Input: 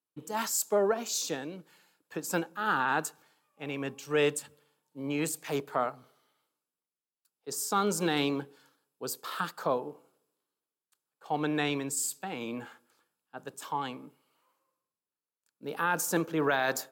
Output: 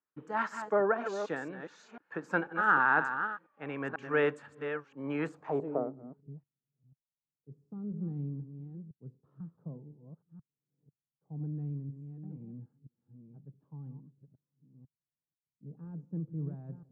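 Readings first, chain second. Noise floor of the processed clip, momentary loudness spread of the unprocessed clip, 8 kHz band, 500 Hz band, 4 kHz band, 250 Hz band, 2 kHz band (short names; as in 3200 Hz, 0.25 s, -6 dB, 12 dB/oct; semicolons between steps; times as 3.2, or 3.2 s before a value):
under -85 dBFS, 16 LU, under -25 dB, -3.5 dB, -18.0 dB, -4.5 dB, +1.0 dB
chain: reverse delay 0.495 s, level -8.5 dB; low-pass sweep 1600 Hz -> 140 Hz, 5.23–6.34; bell 6700 Hz +5 dB 0.41 oct; gain -2.5 dB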